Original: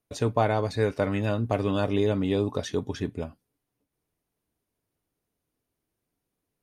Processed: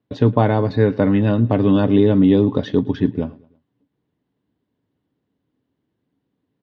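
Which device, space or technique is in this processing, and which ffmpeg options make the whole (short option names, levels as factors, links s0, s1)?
guitar cabinet: -filter_complex "[0:a]asettb=1/sr,asplit=3[s0][s1][s2];[s0]atrim=end=0.564[s3];[s1]atrim=start=0.56:end=1.15,asetpts=PTS-STARTPTS,afade=t=in:d=0.004:c=qsin,afade=t=out:st=0.586:d=0.004:c=qsin,bandreject=f=3200:w=11[s4];[s2]atrim=start=1.146[s5];[s3][s4]acrossfade=d=0.004:c1=hsin:c2=qsin[s6];[s6][s5]acrossfade=d=0.004:c1=qsin:c2=hsin,highpass=79,equalizer=f=120:t=q:w=4:g=5,equalizer=f=190:t=q:w=4:g=5,equalizer=f=270:t=q:w=4:g=8,equalizer=f=680:t=q:w=4:g=-5,equalizer=f=1300:t=q:w=4:g=-6,equalizer=f=2400:t=q:w=4:g=-9,lowpass=f=3500:w=0.5412,lowpass=f=3500:w=1.3066,aecho=1:1:109|218|327:0.0794|0.035|0.0154,volume=2.51"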